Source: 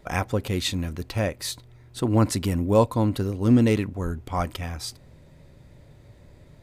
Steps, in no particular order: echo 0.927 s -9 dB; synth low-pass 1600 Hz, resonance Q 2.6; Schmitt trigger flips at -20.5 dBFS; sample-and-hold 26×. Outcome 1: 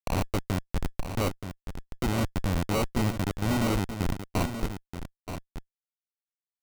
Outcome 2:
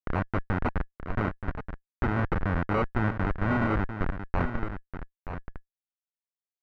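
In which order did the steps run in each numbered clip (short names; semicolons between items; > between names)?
synth low-pass > Schmitt trigger > sample-and-hold > echo; Schmitt trigger > echo > sample-and-hold > synth low-pass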